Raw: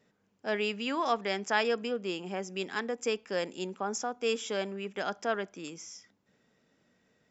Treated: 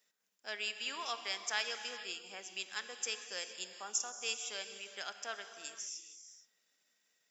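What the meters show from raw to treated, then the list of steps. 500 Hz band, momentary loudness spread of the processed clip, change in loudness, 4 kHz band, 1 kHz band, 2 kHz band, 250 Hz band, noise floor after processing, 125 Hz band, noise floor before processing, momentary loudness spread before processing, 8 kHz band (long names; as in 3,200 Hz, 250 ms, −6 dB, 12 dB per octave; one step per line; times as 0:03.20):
−17.5 dB, 9 LU, −6.5 dB, −0.5 dB, −11.5 dB, −5.5 dB, −23.5 dB, −79 dBFS, below −25 dB, −73 dBFS, 11 LU, can't be measured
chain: transient designer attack +1 dB, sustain −7 dB
first difference
reverb whose tail is shaped and stops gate 490 ms flat, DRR 8 dB
level +5 dB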